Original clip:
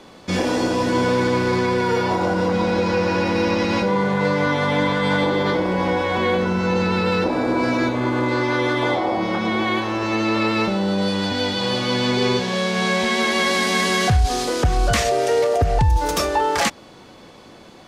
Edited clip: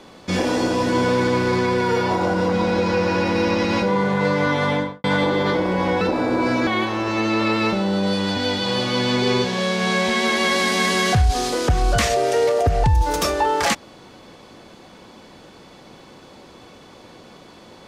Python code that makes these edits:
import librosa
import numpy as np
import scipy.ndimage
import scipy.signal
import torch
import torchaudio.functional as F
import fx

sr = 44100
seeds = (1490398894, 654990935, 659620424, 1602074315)

y = fx.studio_fade_out(x, sr, start_s=4.68, length_s=0.36)
y = fx.edit(y, sr, fx.cut(start_s=6.01, length_s=1.17),
    fx.cut(start_s=7.84, length_s=1.78), tone=tone)